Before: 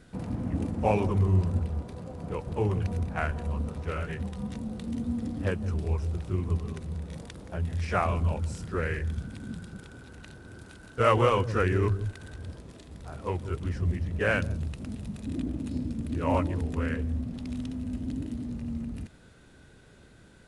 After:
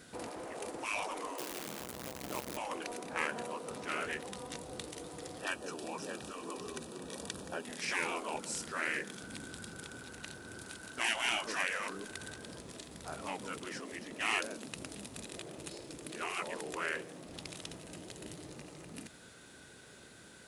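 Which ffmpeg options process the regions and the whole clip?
ffmpeg -i in.wav -filter_complex "[0:a]asettb=1/sr,asplit=3[link_01][link_02][link_03];[link_01]atrim=end=1.384[link_04];[link_02]atrim=start=1.38:end=2.57,asetpts=PTS-STARTPTS,afade=type=in:duration=0.004:curve=qsin,afade=type=out:start_time=1.186:duration=0.004:curve=qsin,tremolo=f=130:d=1,acrusher=bits=8:dc=4:mix=0:aa=0.000001[link_05];[link_03]atrim=start=2.566[link_06];[link_04][link_05]acrossfade=duration=0.004:curve1=hsin:curve2=qsin[link_07];[link_07][link_06]acrossfade=duration=0.004:curve1=qsin:curve2=hsin,asettb=1/sr,asplit=3[link_08][link_09][link_10];[link_08]atrim=end=5.404[link_11];[link_09]atrim=start=5.4:end=7.65,asetpts=PTS-STARTPTS,afade=type=in:duration=0.004:curve=qsin,afade=type=out:start_time=2.246:duration=0.004:curve=qsin,asuperstop=centerf=2100:order=12:qfactor=6.5,aecho=1:1:619:0.237,atrim=end_sample=99225[link_12];[link_10]atrim=start=7.646[link_13];[link_11][link_12]acrossfade=duration=0.004:curve1=hsin:curve2=qsin[link_14];[link_14][link_13]acrossfade=duration=0.004:curve1=qsin:curve2=hsin,afftfilt=real='re*lt(hypot(re,im),0.0891)':imag='im*lt(hypot(re,im),0.0891)':win_size=1024:overlap=0.75,highpass=frequency=310:poles=1,highshelf=frequency=4500:gain=9,volume=2dB" out.wav

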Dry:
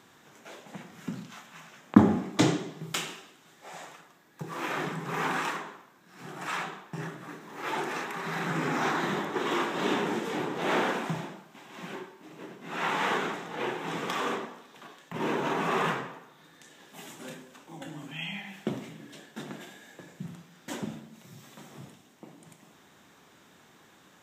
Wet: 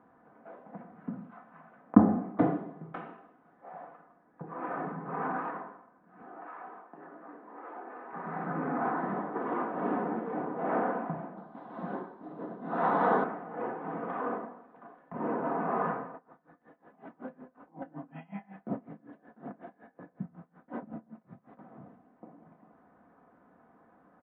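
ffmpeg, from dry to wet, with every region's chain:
ffmpeg -i in.wav -filter_complex "[0:a]asettb=1/sr,asplit=3[link_01][link_02][link_03];[link_01]atrim=end=6.224[link_04];[link_02]atrim=start=6.22:end=8.13,asetpts=PTS-STARTPTS,afade=type=in:duration=0.004:curve=qsin,afade=type=out:start_time=1.906:duration=0.004:curve=qsin,acompressor=threshold=-39dB:ratio=3:attack=3.2:release=140:knee=1:detection=peak,highpass=frequency=260:width=0.5412,highpass=frequency=260:width=1.3066[link_05];[link_03]atrim=start=8.126[link_06];[link_04][link_05]acrossfade=duration=0.004:curve1=hsin:curve2=qsin[link_07];[link_07][link_06]acrossfade=duration=0.004:curve1=qsin:curve2=hsin,asettb=1/sr,asplit=3[link_08][link_09][link_10];[link_08]atrim=end=11.374[link_11];[link_09]atrim=start=11.37:end=13.24,asetpts=PTS-STARTPTS,afade=type=in:duration=0.004:curve=qsin,afade=type=out:start_time=1.866:duration=0.004:curve=qsin,acontrast=80,highshelf=frequency=3200:width_type=q:width=3:gain=8.5[link_12];[link_10]atrim=start=13.236[link_13];[link_11][link_12]acrossfade=duration=0.004:curve1=hsin:curve2=qsin[link_14];[link_14][link_13]acrossfade=duration=0.004:curve1=qsin:curve2=hsin,asettb=1/sr,asplit=3[link_15][link_16][link_17];[link_15]atrim=end=16.144[link_18];[link_16]atrim=start=16.14:end=21.59,asetpts=PTS-STARTPTS,afade=type=in:duration=0.004:curve=qsin,afade=type=out:start_time=5.446:duration=0.004:curve=qsin,acontrast=51,aeval=exprs='val(0)*pow(10,-23*(0.5-0.5*cos(2*PI*5.4*n/s))/20)':channel_layout=same[link_19];[link_17]atrim=start=21.586[link_20];[link_18][link_19]acrossfade=duration=0.004:curve1=hsin:curve2=qsin[link_21];[link_21][link_20]acrossfade=duration=0.004:curve1=qsin:curve2=hsin,lowpass=frequency=1400:width=0.5412,lowpass=frequency=1400:width=1.3066,equalizer=frequency=670:width=7.1:gain=9,aecho=1:1:4:0.46,volume=-3.5dB" out.wav

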